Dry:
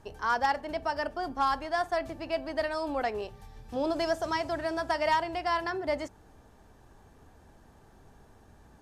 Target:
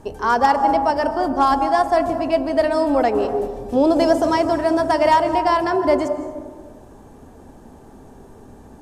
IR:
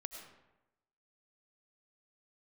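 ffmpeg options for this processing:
-filter_complex "[0:a]asplit=2[s0][s1];[s1]equalizer=f=250:t=o:w=1:g=11,equalizer=f=500:t=o:w=1:g=6,equalizer=f=1000:t=o:w=1:g=5,equalizer=f=2000:t=o:w=1:g=-8,equalizer=f=4000:t=o:w=1:g=-10,equalizer=f=8000:t=o:w=1:g=6[s2];[1:a]atrim=start_sample=2205,asetrate=27783,aresample=44100[s3];[s2][s3]afir=irnorm=-1:irlink=0,volume=1[s4];[s0][s4]amix=inputs=2:normalize=0,volume=1.68"

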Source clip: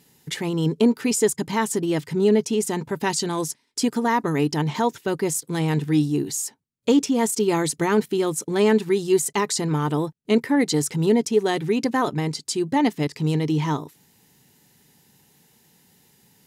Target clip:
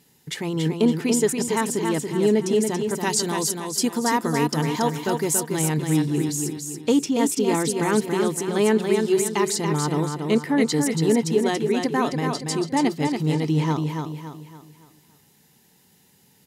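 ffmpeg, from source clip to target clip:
-filter_complex "[0:a]asettb=1/sr,asplit=3[s0][s1][s2];[s0]atrim=end=2.794[s3];[s1]atrim=start=2.79:end=5.53,asetpts=PTS-STARTPTS,afade=t=in:d=0.004:c=qsin,afade=t=out:st=2.736:d=0.004:c=qsin,highshelf=f=6200:g=8.5[s4];[s2]atrim=start=5.526[s5];[s3][s4]acrossfade=d=0.004:c1=hsin:c2=qsin[s6];[s6][s5]acrossfade=d=0.004:c1=qsin:c2=hsin,aecho=1:1:282|564|846|1128|1410:0.562|0.231|0.0945|0.0388|0.0159,volume=0.841"

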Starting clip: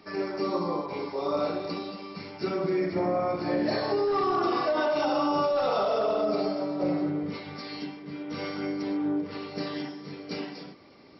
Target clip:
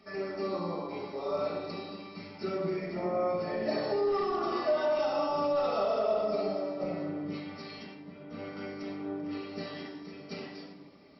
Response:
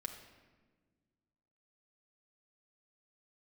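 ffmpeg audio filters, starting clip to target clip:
-filter_complex "[0:a]asettb=1/sr,asplit=3[s0][s1][s2];[s0]atrim=end=7.944[s3];[s1]atrim=start=7.94:end=8.57,asetpts=PTS-STARTPTS,afade=t=in:d=0.004:c=qsin,afade=t=out:st=0.626:d=0.004:c=qsin,highshelf=f=2100:g=-10.5[s4];[s2]atrim=start=8.566[s5];[s3][s4]acrossfade=d=0.004:c1=hsin:c2=qsin[s6];[s6][s5]acrossfade=d=0.004:c1=qsin:c2=hsin[s7];[1:a]atrim=start_sample=2205,asetrate=61740,aresample=44100[s8];[s7][s8]afir=irnorm=-1:irlink=0"

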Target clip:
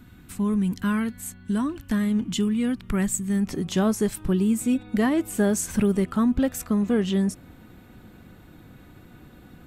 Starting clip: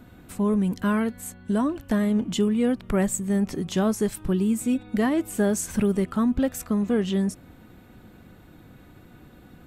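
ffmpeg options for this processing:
-af "asetnsamples=n=441:p=0,asendcmd='3.48 equalizer g -2',equalizer=f=580:w=1.1:g=-12.5,volume=1.19"

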